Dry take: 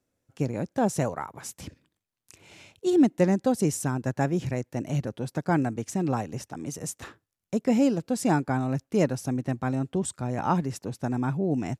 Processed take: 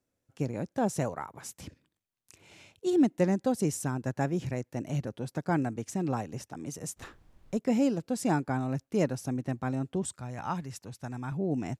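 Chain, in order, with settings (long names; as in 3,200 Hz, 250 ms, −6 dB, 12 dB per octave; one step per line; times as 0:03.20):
0:06.96–0:07.58: background noise brown −53 dBFS
0:10.20–0:11.32: parametric band 350 Hz −9.5 dB 2.4 octaves
level −4 dB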